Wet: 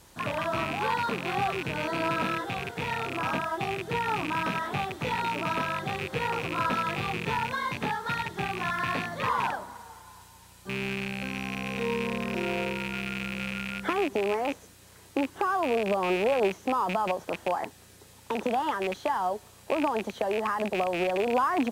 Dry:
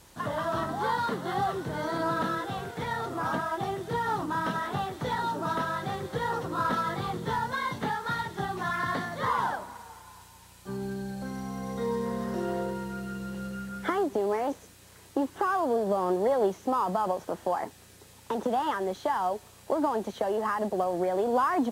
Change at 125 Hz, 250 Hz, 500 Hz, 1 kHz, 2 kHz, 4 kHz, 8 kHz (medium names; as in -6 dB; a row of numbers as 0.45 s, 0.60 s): +0.5 dB, 0.0 dB, 0.0 dB, 0.0 dB, +4.0 dB, +5.5 dB, +1.0 dB